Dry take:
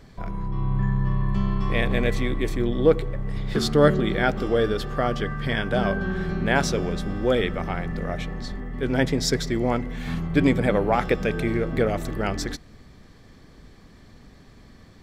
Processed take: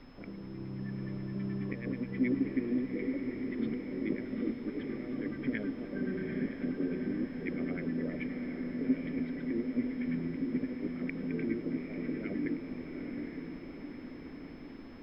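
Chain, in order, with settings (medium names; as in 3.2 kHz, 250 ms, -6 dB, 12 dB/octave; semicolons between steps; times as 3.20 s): high-pass 50 Hz; peaking EQ 530 Hz +10 dB 0.8 oct; compressor with a negative ratio -23 dBFS, ratio -0.5; LFO low-pass sine 9.4 Hz 650–2100 Hz; whistle 5.2 kHz -27 dBFS; vowel filter i; added noise pink -54 dBFS; distance through air 380 m; echo that smears into a reverb 847 ms, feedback 58%, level -5 dB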